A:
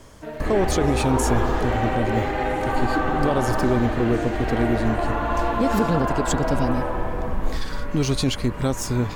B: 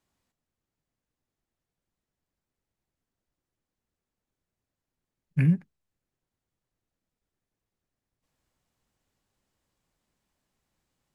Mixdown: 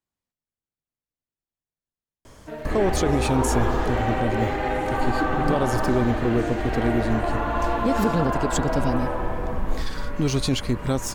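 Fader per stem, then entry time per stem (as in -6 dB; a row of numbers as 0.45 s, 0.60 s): -1.0 dB, -11.0 dB; 2.25 s, 0.00 s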